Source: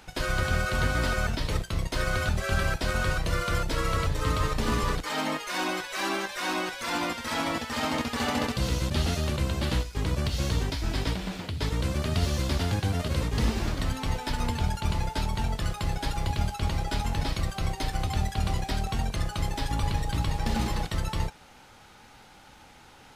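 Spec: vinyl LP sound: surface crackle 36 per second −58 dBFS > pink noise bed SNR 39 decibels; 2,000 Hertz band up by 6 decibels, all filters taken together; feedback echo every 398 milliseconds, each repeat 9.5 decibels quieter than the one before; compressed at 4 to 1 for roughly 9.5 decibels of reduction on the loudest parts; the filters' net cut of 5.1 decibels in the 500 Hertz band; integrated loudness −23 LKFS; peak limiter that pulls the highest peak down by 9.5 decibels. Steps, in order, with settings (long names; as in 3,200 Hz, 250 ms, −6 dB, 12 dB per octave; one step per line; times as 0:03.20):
parametric band 500 Hz −7 dB
parametric band 2,000 Hz +8.5 dB
downward compressor 4 to 1, threshold −33 dBFS
brickwall limiter −30 dBFS
repeating echo 398 ms, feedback 33%, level −9.5 dB
surface crackle 36 per second −58 dBFS
pink noise bed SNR 39 dB
level +16 dB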